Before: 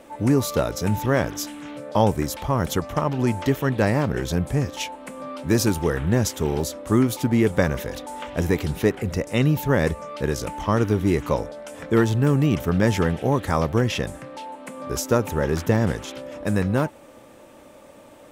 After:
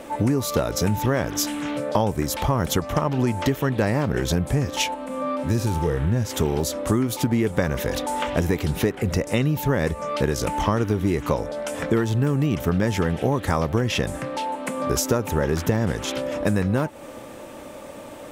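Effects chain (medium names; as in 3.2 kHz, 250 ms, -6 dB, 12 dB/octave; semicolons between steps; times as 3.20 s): 4.94–6.31 s: harmonic-percussive split percussive -17 dB; compression 6:1, threshold -27 dBFS, peak gain reduction 13.5 dB; trim +8.5 dB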